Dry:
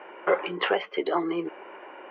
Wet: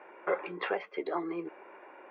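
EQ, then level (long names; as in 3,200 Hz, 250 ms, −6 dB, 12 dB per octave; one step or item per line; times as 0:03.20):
Butterworth band-reject 3,000 Hz, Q 7.5
−7.5 dB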